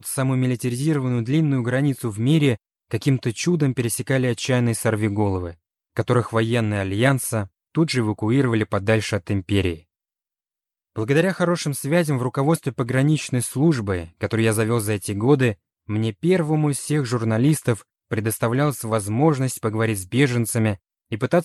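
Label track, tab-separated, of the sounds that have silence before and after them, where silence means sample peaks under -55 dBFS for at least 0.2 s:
2.900000	5.560000	sound
5.960000	7.480000	sound
7.750000	9.830000	sound
10.960000	15.560000	sound
15.880000	17.830000	sound
18.110000	20.780000	sound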